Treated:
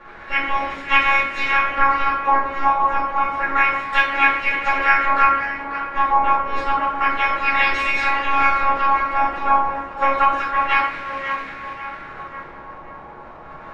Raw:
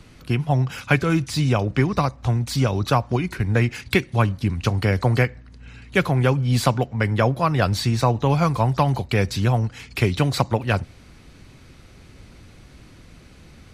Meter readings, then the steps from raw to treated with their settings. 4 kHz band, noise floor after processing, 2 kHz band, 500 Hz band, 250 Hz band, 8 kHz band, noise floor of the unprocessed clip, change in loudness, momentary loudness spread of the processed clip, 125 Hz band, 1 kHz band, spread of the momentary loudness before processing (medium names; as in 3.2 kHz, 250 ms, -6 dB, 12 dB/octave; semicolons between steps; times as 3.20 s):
0.0 dB, -39 dBFS, +10.0 dB, -5.5 dB, -10.5 dB, under -10 dB, -48 dBFS, +3.0 dB, 15 LU, under -20 dB, +10.5 dB, 4 LU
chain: spectral gate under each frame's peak -20 dB weak; bass shelf 430 Hz -6.5 dB; robot voice 276 Hz; crackle 390 per s -37 dBFS; LFO low-pass sine 0.29 Hz 970–2100 Hz; on a send: tape echo 540 ms, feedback 56%, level -8 dB, low-pass 3.1 kHz; on the sum: simulated room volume 100 m³, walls mixed, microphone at 2.4 m; tape noise reduction on one side only decoder only; trim +8 dB